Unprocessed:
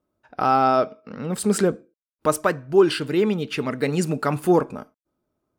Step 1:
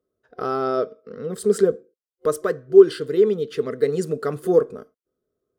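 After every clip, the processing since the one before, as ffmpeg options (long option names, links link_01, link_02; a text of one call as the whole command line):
ffmpeg -i in.wav -af "superequalizer=7b=3.98:9b=0.355:12b=0.398,volume=-6dB" out.wav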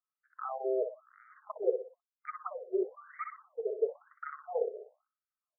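ffmpeg -i in.wav -filter_complex "[0:a]aeval=exprs='0.266*(abs(mod(val(0)/0.266+3,4)-2)-1)':channel_layout=same,asplit=2[link_01][link_02];[link_02]aecho=0:1:61|122|183|244|305:0.531|0.202|0.0767|0.0291|0.0111[link_03];[link_01][link_03]amix=inputs=2:normalize=0,afftfilt=real='re*between(b*sr/1024,490*pow(1700/490,0.5+0.5*sin(2*PI*1*pts/sr))/1.41,490*pow(1700/490,0.5+0.5*sin(2*PI*1*pts/sr))*1.41)':imag='im*between(b*sr/1024,490*pow(1700/490,0.5+0.5*sin(2*PI*1*pts/sr))/1.41,490*pow(1700/490,0.5+0.5*sin(2*PI*1*pts/sr))*1.41)':win_size=1024:overlap=0.75,volume=-8dB" out.wav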